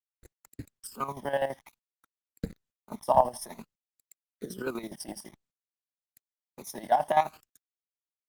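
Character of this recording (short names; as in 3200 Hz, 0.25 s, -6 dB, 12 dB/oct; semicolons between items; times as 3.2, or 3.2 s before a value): a quantiser's noise floor 8-bit, dither none; chopped level 12 Hz, depth 65%, duty 45%; phasing stages 12, 0.54 Hz, lowest notch 410–1100 Hz; Opus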